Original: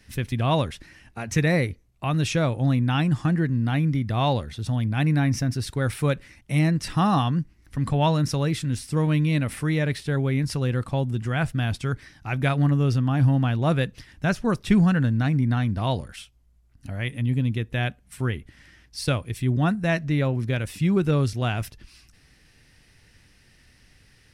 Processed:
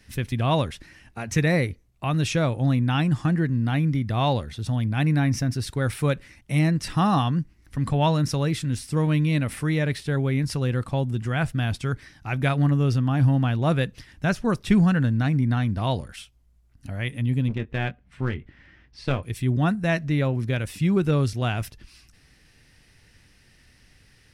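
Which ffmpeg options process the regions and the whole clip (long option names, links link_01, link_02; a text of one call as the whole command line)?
ffmpeg -i in.wav -filter_complex "[0:a]asettb=1/sr,asplit=3[link_01][link_02][link_03];[link_01]atrim=end=17.484[link_04];[link_02]atrim=start=17.48:end=19.23,asetpts=PTS-STARTPTS,afade=type=in:duration=0.004:curve=qsin,afade=type=out:start_time=1.746:duration=0.004:curve=qsin,lowpass=2700,aeval=exprs='clip(val(0),-1,0.0376)':channel_layout=same,asplit=2[link_05][link_06];[link_06]adelay=22,volume=-11dB[link_07];[link_05][link_07]amix=inputs=2:normalize=0,atrim=end_sample=77175[link_08];[link_03]atrim=start=19.226[link_09];[link_04][link_08]acrossfade=duration=0.004:curve1=hsin:curve2=qsin[link_10];[link_10][link_09]acrossfade=duration=0.004:curve1=qsin:curve2=hsin" out.wav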